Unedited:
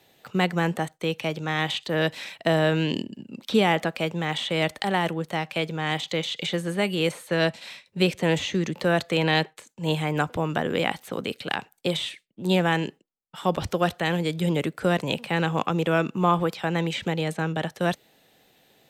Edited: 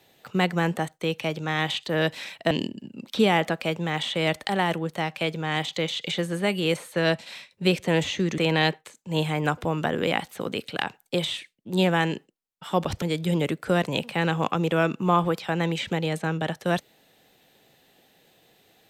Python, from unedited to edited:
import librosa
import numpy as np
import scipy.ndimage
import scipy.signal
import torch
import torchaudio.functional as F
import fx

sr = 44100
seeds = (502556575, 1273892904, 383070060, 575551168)

y = fx.edit(x, sr, fx.cut(start_s=2.51, length_s=0.35),
    fx.cut(start_s=8.73, length_s=0.37),
    fx.cut(start_s=13.74, length_s=0.43), tone=tone)